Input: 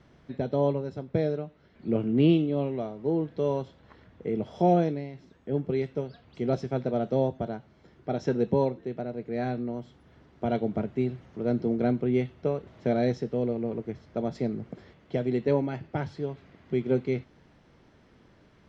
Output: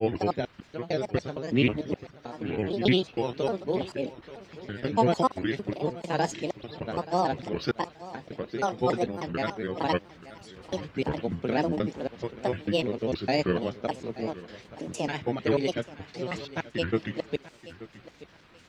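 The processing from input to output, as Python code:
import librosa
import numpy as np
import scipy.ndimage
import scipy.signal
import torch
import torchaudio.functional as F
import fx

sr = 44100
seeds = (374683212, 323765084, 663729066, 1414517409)

p1 = fx.block_reorder(x, sr, ms=151.0, group=5)
p2 = fx.tilt_shelf(p1, sr, db=-8.0, hz=1100.0)
p3 = fx.granulator(p2, sr, seeds[0], grain_ms=100.0, per_s=20.0, spray_ms=21.0, spread_st=7)
p4 = p3 + fx.echo_feedback(p3, sr, ms=880, feedback_pct=25, wet_db=-17.0, dry=0)
y = p4 * librosa.db_to_amplitude(6.0)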